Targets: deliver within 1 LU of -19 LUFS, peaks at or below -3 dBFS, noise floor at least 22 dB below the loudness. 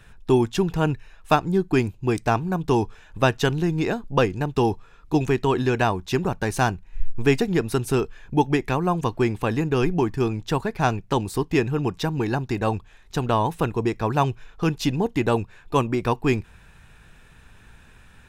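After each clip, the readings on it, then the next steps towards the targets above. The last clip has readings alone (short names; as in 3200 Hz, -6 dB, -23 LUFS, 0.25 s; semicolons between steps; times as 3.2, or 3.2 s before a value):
loudness -23.5 LUFS; peak -6.0 dBFS; loudness target -19.0 LUFS
-> gain +4.5 dB; limiter -3 dBFS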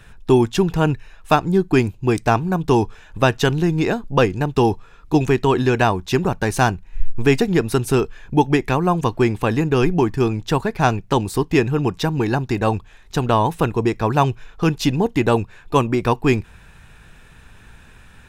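loudness -19.5 LUFS; peak -3.0 dBFS; noise floor -46 dBFS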